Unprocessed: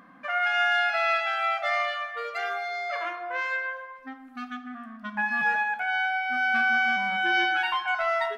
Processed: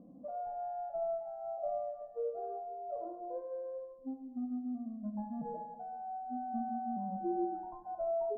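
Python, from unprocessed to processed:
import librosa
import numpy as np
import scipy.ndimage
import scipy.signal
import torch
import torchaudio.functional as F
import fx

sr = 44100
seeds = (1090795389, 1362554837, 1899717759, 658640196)

p1 = scipy.signal.sosfilt(scipy.signal.butter(6, 600.0, 'lowpass', fs=sr, output='sos'), x)
p2 = p1 + fx.room_flutter(p1, sr, wall_m=11.8, rt60_s=0.29, dry=0)
y = p2 * librosa.db_to_amplitude(1.5)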